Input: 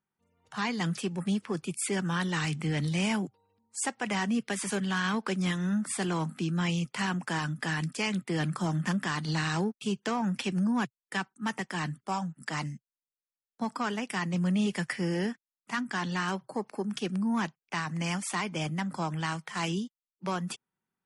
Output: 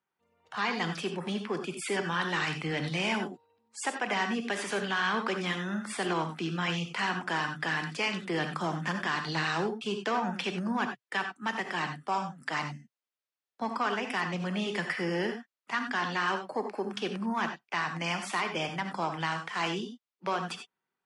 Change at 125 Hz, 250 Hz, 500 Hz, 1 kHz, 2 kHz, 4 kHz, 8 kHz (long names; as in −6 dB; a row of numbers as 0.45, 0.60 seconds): −6.5, −4.5, +2.0, +3.0, +3.0, +2.0, −6.0 decibels